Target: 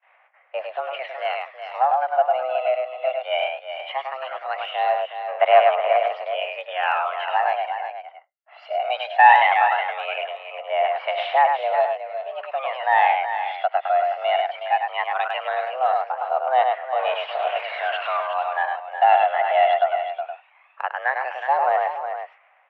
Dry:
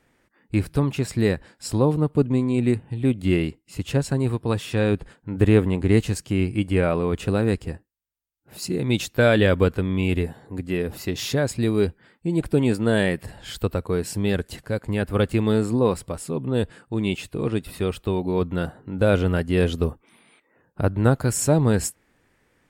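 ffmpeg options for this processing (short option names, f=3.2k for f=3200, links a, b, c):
-filter_complex "[0:a]asettb=1/sr,asplit=3[a][b][c];[a]atrim=end=16.994[d];[b]atrim=start=16.99:end=18.17,asetpts=PTS-STARTPTS,afade=t=in:d=0.004:c=qsin,afade=t=out:st=1.176:d=0.004:c=qsin,aeval=exprs='val(0)+0.5*0.0562*sgn(val(0))':c=same[e];[c]atrim=start=18.166[f];[d][e]acrossfade=d=0.004:c1=hsin:c2=qsin[g];[g][f]acrossfade=d=0.004:c1=qsin:c2=hsin,asplit=2[h][i];[i]aecho=0:1:102:0.596[j];[h][j]amix=inputs=2:normalize=0,acontrast=45,agate=range=-22dB:threshold=-59dB:ratio=16:detection=peak,highpass=f=420:t=q:w=0.5412,highpass=f=420:t=q:w=1.307,lowpass=f=2.6k:t=q:w=0.5176,lowpass=f=2.6k:t=q:w=0.7071,lowpass=f=2.6k:t=q:w=1.932,afreqshift=260,aphaser=in_gain=1:out_gain=1:delay=1.5:decay=0.55:speed=0.18:type=sinusoidal,asplit=2[k][l];[l]aecho=0:1:367:0.355[m];[k][m]amix=inputs=2:normalize=0,volume=-2.5dB"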